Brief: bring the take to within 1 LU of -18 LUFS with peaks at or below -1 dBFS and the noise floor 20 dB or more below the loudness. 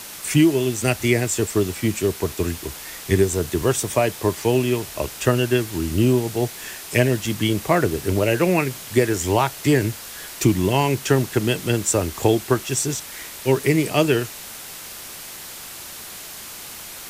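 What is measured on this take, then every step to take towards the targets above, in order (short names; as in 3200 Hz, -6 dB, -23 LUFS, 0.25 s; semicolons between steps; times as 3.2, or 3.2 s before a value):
noise floor -37 dBFS; noise floor target -41 dBFS; loudness -21.0 LUFS; peak -3.0 dBFS; loudness target -18.0 LUFS
-> denoiser 6 dB, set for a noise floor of -37 dBFS; gain +3 dB; limiter -1 dBFS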